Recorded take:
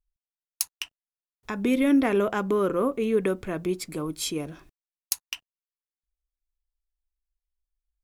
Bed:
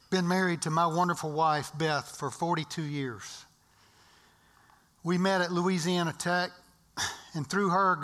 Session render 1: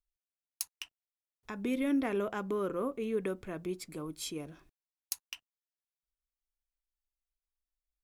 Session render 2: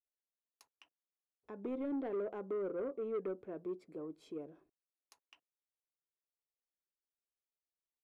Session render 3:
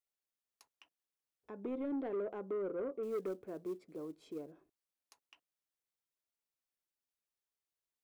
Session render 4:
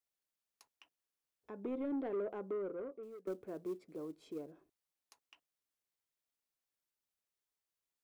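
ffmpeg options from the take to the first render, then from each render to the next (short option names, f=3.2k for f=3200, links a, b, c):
-af "volume=-9.5dB"
-af "bandpass=f=450:t=q:w=1.6:csg=0,asoftclip=type=tanh:threshold=-32.5dB"
-filter_complex "[0:a]asettb=1/sr,asplit=3[a][b][c];[a]atrim=end=3.034[d];[b]atrim=start=3.03:end=4.52,asetpts=PTS-STARTPTS,afade=t=in:d=0.004:c=qsin,afade=t=out:st=1.486:d=0.004:c=qsin,acrusher=bits=7:mode=log:mix=0:aa=0.000001[e];[c]atrim=start=4.516[f];[d][e]acrossfade=d=0.004:c1=hsin:c2=qsin[g];[g][f]acrossfade=d=0.004:c1=qsin:c2=hsin"
-filter_complex "[0:a]asplit=2[a][b];[a]atrim=end=3.27,asetpts=PTS-STARTPTS,afade=t=out:st=2.45:d=0.82:silence=0.0794328[c];[b]atrim=start=3.27,asetpts=PTS-STARTPTS,afade=t=in:d=0.004:c=hsin:silence=0.0794328[d];[c][d]concat=n=2:v=0:a=1"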